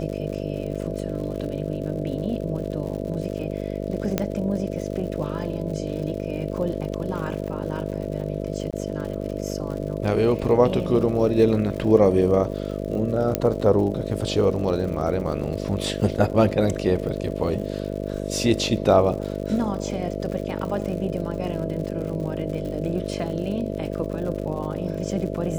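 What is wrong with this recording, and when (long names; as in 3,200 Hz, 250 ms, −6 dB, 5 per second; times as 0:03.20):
mains buzz 50 Hz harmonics 13 −29 dBFS
surface crackle 100 per second −33 dBFS
0:04.18: click −8 dBFS
0:08.71–0:08.73: drop-out 17 ms
0:13.35: click −5 dBFS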